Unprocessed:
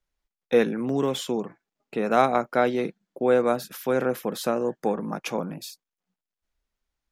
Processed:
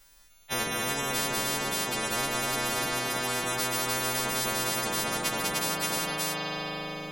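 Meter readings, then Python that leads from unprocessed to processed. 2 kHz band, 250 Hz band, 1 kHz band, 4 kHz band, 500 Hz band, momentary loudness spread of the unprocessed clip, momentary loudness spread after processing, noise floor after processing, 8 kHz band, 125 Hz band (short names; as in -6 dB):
+4.5 dB, -8.5 dB, -3.0 dB, +9.5 dB, -10.5 dB, 11 LU, 3 LU, -57 dBFS, +13.0 dB, -1.5 dB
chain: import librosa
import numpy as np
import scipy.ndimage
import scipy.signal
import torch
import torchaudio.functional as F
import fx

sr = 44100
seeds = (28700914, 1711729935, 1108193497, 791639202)

p1 = fx.freq_snap(x, sr, grid_st=2)
p2 = p1 + fx.echo_multitap(p1, sr, ms=(196, 302, 579), db=(-9.0, -5.5, -5.0), dry=0)
p3 = fx.rev_spring(p2, sr, rt60_s=3.2, pass_ms=(39,), chirp_ms=35, drr_db=5.0)
p4 = fx.spectral_comp(p3, sr, ratio=10.0)
y = F.gain(torch.from_numpy(p4), -8.5).numpy()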